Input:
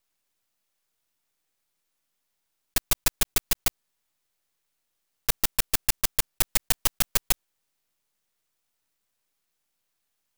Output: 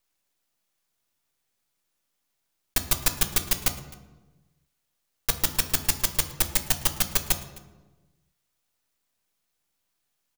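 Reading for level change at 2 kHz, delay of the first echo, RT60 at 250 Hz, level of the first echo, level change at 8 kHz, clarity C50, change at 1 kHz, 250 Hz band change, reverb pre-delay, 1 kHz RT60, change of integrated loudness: +0.5 dB, 0.26 s, 1.5 s, -23.0 dB, +0.5 dB, 11.0 dB, +1.0 dB, +3.0 dB, 3 ms, 1.1 s, +0.5 dB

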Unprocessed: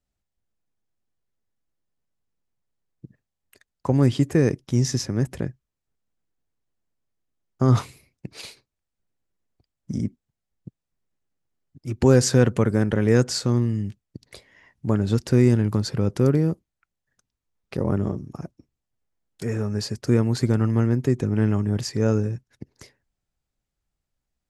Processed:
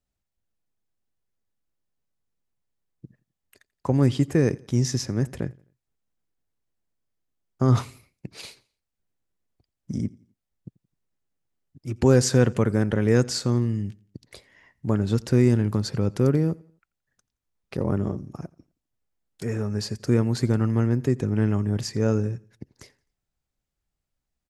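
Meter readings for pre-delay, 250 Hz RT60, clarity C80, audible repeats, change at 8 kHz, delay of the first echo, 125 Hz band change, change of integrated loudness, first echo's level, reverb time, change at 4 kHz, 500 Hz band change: none, none, none, 2, -1.5 dB, 86 ms, -1.5 dB, -1.5 dB, -24.0 dB, none, -1.5 dB, -1.5 dB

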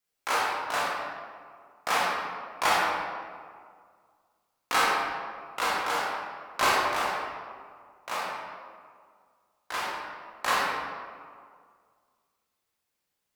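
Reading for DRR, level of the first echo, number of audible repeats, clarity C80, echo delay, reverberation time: -6.5 dB, none, none, 0.5 dB, none, 2.0 s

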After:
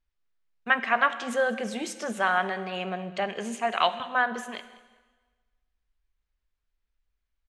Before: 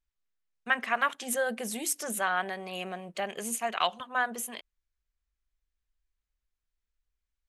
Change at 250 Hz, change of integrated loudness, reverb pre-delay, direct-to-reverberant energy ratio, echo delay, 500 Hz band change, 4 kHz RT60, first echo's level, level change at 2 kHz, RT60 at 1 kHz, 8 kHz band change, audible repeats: +5.0 dB, +4.0 dB, 5 ms, 11.5 dB, 0.196 s, +5.0 dB, 1.2 s, -21.5 dB, +4.5 dB, 1.3 s, -8.5 dB, 2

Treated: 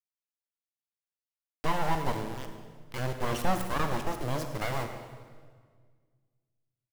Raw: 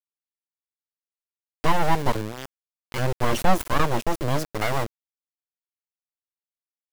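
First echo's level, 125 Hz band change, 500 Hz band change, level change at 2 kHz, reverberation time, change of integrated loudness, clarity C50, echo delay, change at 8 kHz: -15.5 dB, -6.5 dB, -7.0 dB, -7.0 dB, 1.8 s, -7.0 dB, 6.5 dB, 0.107 s, -7.0 dB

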